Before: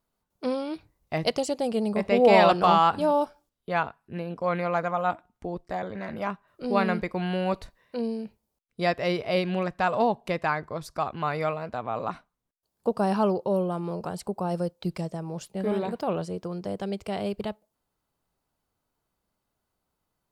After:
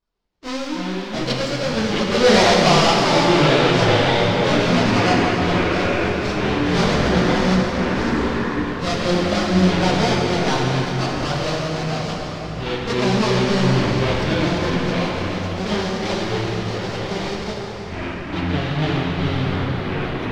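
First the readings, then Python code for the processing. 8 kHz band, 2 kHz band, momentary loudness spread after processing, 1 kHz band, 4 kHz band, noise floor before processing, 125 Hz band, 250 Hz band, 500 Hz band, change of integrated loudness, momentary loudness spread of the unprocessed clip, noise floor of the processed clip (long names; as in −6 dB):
can't be measured, +12.0 dB, 11 LU, +5.0 dB, +16.0 dB, −81 dBFS, +14.0 dB, +10.5 dB, +6.5 dB, +8.0 dB, 14 LU, −29 dBFS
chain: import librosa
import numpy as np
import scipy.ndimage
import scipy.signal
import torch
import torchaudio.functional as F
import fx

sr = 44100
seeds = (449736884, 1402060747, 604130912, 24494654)

p1 = fx.halfwave_hold(x, sr)
p2 = fx.lowpass_res(p1, sr, hz=5000.0, q=2.0)
p3 = np.sign(p2) * np.maximum(np.abs(p2) - 10.0 ** (-35.5 / 20.0), 0.0)
p4 = p2 + (p3 * librosa.db_to_amplitude(-3.0))
p5 = fx.chorus_voices(p4, sr, voices=6, hz=1.0, base_ms=25, depth_ms=3.0, mix_pct=65)
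p6 = fx.echo_pitch(p5, sr, ms=120, semitones=-6, count=3, db_per_echo=-3.0)
p7 = fx.rev_plate(p6, sr, seeds[0], rt60_s=4.6, hf_ratio=0.75, predelay_ms=0, drr_db=-1.5)
y = p7 * librosa.db_to_amplitude(-5.5)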